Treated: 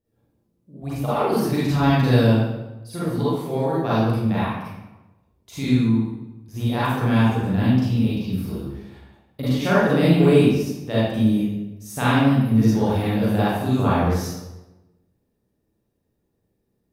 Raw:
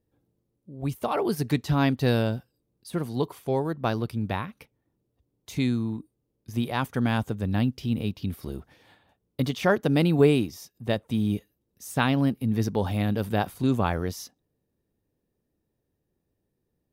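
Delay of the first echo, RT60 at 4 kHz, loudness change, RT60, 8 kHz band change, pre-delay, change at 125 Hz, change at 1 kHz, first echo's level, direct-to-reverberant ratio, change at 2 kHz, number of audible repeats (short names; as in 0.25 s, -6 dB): none, 0.75 s, +6.0 dB, 1.0 s, +4.0 dB, 36 ms, +7.0 dB, +6.0 dB, none, -10.5 dB, +4.5 dB, none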